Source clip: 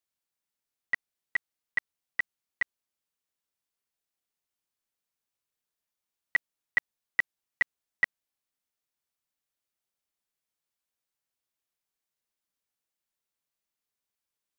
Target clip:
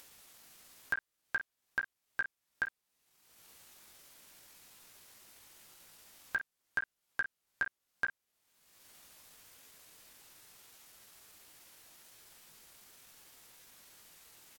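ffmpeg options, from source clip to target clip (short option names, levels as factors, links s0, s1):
-af "asetrate=36028,aresample=44100,atempo=1.22405,alimiter=level_in=1.12:limit=0.0631:level=0:latency=1,volume=0.891,aecho=1:1:19|51:0.422|0.299,acompressor=mode=upward:threshold=0.0141:ratio=2.5,volume=1.12"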